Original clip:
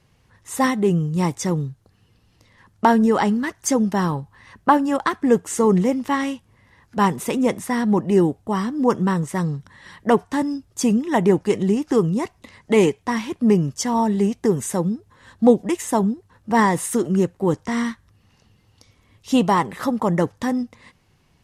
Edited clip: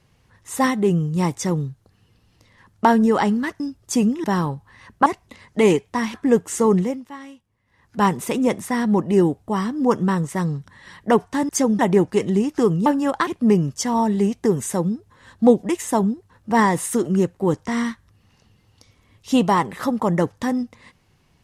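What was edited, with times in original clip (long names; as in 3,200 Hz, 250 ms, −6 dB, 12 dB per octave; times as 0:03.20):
0:03.60–0:03.90: swap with 0:10.48–0:11.12
0:04.72–0:05.13: swap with 0:12.19–0:13.27
0:05.71–0:06.98: duck −15.5 dB, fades 0.34 s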